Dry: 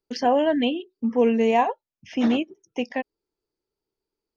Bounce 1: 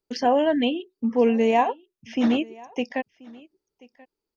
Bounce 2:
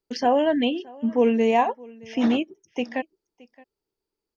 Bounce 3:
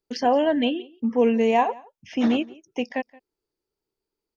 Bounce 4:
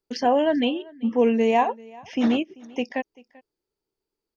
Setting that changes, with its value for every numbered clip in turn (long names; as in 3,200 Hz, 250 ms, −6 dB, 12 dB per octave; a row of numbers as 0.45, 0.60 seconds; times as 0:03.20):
single-tap delay, delay time: 1,033, 620, 174, 389 milliseconds